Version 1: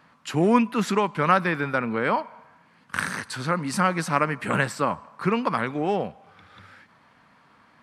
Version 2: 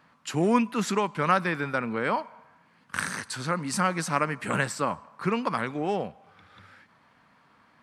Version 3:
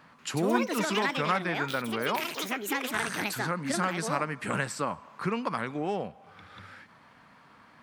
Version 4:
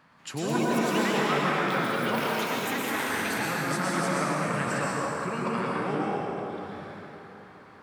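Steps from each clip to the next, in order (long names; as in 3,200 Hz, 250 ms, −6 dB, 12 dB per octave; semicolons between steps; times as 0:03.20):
dynamic equaliser 7,300 Hz, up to +6 dB, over −48 dBFS, Q 0.93; level −3.5 dB
delay with pitch and tempo change per echo 187 ms, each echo +7 semitones, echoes 2; downward compressor 1.5 to 1, threshold −45 dBFS, peak gain reduction 11 dB; level +4.5 dB
dense smooth reverb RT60 3.8 s, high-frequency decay 0.6×, pre-delay 95 ms, DRR −5.5 dB; level −4 dB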